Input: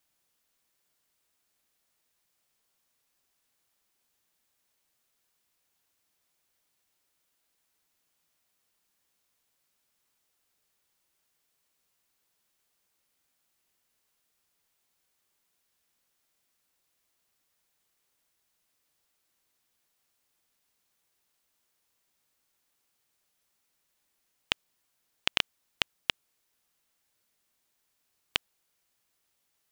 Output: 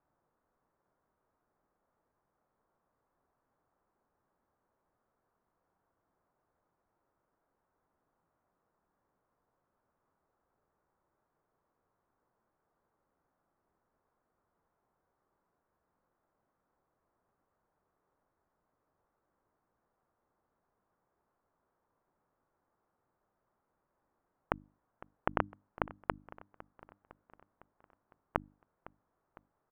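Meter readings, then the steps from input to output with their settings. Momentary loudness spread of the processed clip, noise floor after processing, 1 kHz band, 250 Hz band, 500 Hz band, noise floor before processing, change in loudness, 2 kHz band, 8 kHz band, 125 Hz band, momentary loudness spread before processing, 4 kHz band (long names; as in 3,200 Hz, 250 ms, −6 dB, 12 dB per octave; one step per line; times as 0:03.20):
21 LU, −83 dBFS, +6.0 dB, +7.0 dB, +7.5 dB, −77 dBFS, −7.0 dB, −8.5 dB, below −25 dB, +6.5 dB, 5 LU, −29.0 dB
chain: inverse Chebyshev low-pass filter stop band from 4,200 Hz, stop band 60 dB
mains-hum notches 50/100/150/200/250/300 Hz
on a send: repeating echo 506 ms, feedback 57%, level −19.5 dB
on the sum: level +7.5 dB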